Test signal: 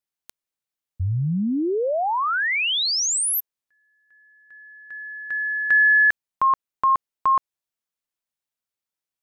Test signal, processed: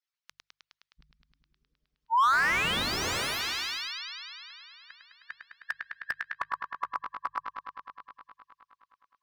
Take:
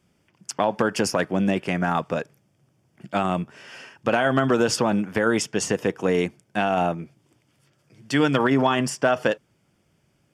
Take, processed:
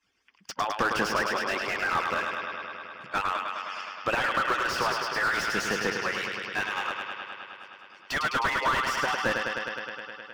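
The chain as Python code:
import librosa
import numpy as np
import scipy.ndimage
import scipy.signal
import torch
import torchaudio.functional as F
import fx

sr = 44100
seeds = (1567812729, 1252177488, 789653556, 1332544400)

p1 = fx.hpss_only(x, sr, part='percussive')
p2 = fx.band_shelf(p1, sr, hz=2500.0, db=13.0, octaves=2.9)
p3 = fx.hum_notches(p2, sr, base_hz=50, count=3)
p4 = p3 + fx.echo_bbd(p3, sr, ms=104, stages=4096, feedback_pct=81, wet_db=-7.0, dry=0)
p5 = fx.slew_limit(p4, sr, full_power_hz=280.0)
y = F.gain(torch.from_numpy(p5), -8.5).numpy()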